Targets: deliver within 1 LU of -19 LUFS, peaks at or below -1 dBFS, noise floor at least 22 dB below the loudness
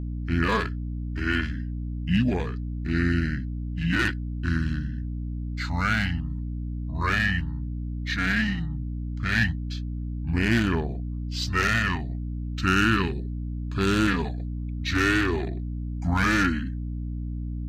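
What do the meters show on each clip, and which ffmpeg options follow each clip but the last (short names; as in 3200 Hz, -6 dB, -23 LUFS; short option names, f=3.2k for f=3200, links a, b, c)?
hum 60 Hz; harmonics up to 300 Hz; hum level -29 dBFS; loudness -26.5 LUFS; peak -10.0 dBFS; loudness target -19.0 LUFS
-> -af "bandreject=f=60:t=h:w=6,bandreject=f=120:t=h:w=6,bandreject=f=180:t=h:w=6,bandreject=f=240:t=h:w=6,bandreject=f=300:t=h:w=6"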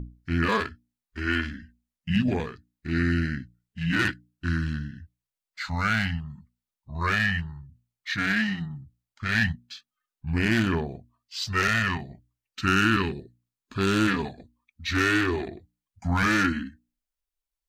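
hum none; loudness -26.5 LUFS; peak -11.0 dBFS; loudness target -19.0 LUFS
-> -af "volume=7.5dB"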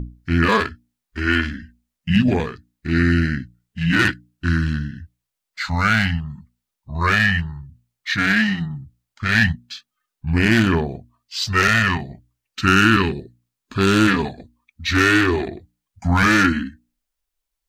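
loudness -19.0 LUFS; peak -3.5 dBFS; noise floor -83 dBFS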